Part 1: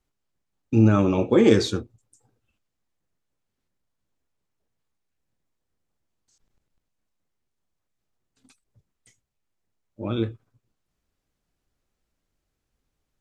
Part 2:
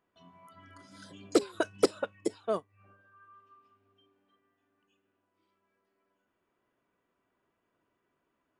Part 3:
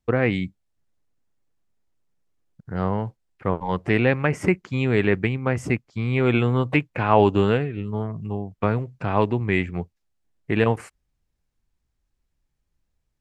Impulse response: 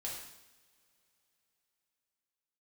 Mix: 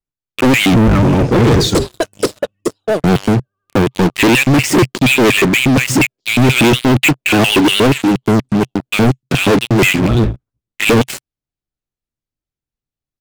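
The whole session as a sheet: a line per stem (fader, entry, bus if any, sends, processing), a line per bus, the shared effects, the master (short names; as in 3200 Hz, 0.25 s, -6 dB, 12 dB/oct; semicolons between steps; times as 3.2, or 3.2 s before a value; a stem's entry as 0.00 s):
-4.0 dB, 0.00 s, no send, octaver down 1 oct, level -1 dB
+2.0 dB, 0.40 s, no send, band shelf 1500 Hz -12 dB
-4.0 dB, 0.30 s, no send, LFO high-pass square 4.2 Hz 330–2600 Hz; graphic EQ 125/250/500/1000/2000/4000 Hz +12/+5/-4/-10/-5/+7 dB; sample leveller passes 3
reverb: off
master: sample leveller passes 5; vibrato 12 Hz 64 cents; bell 130 Hz +4.5 dB 0.43 oct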